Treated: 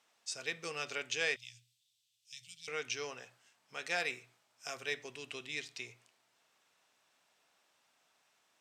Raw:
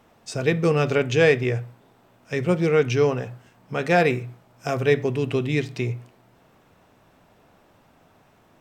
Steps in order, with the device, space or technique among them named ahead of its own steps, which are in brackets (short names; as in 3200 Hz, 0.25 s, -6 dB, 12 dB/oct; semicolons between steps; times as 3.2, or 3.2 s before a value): piezo pickup straight into a mixer (LPF 7000 Hz 12 dB/oct; differentiator); 1.36–2.68 Chebyshev band-stop 110–3300 Hz, order 3